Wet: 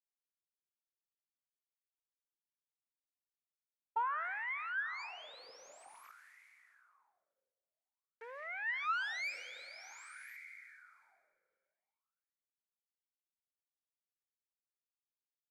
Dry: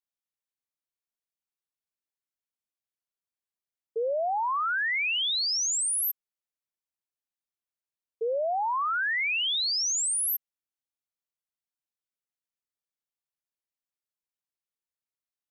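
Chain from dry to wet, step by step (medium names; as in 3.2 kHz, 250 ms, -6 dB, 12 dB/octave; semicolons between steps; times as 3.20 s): band-pass sweep 400 Hz -> 1.5 kHz, 4.41–6.95 s; bit crusher 11-bit; waveshaping leveller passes 1; peaking EQ 2.3 kHz +11 dB 0.27 oct; Chebyshev shaper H 4 -9 dB, 7 -13 dB, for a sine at -15.5 dBFS; plate-style reverb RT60 2.3 s, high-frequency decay 0.65×, DRR 12.5 dB; gain riding within 5 dB 2 s; wah-wah 0.5 Hz 500–2100 Hz, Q 10; level flattener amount 50%; trim +5 dB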